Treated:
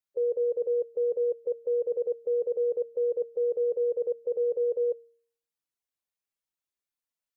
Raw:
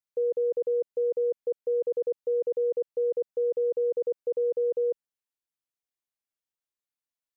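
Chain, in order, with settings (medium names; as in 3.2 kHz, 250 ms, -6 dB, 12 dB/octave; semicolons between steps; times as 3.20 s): coarse spectral quantiser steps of 15 dB; de-hum 233.2 Hz, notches 2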